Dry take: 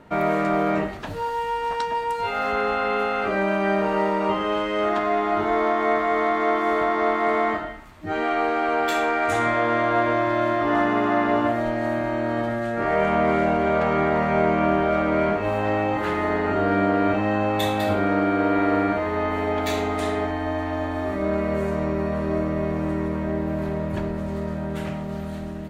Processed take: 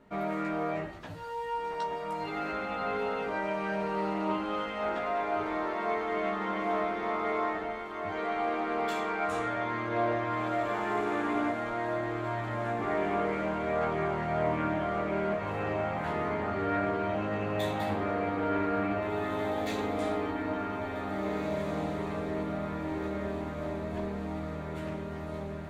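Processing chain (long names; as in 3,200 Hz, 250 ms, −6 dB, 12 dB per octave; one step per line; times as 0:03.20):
multi-voice chorus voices 4, 0.12 Hz, delay 15 ms, depth 4.6 ms
feedback delay with all-pass diffusion 1,931 ms, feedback 56%, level −5.5 dB
highs frequency-modulated by the lows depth 0.11 ms
level −7.5 dB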